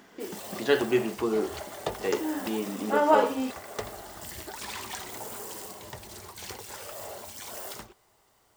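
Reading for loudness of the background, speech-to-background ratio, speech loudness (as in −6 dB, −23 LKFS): −39.0 LKFS, 11.5 dB, −27.5 LKFS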